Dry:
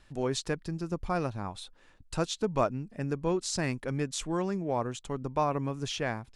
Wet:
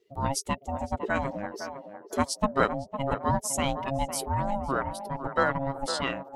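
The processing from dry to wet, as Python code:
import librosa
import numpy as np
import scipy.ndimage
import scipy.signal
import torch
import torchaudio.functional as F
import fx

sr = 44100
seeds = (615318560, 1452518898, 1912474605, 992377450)

y = fx.bin_expand(x, sr, power=1.5)
y = fx.formant_shift(y, sr, semitones=6)
y = y * np.sin(2.0 * np.pi * 410.0 * np.arange(len(y)) / sr)
y = fx.echo_banded(y, sr, ms=507, feedback_pct=41, hz=650.0, wet_db=-7.5)
y = y * librosa.db_to_amplitude(8.0)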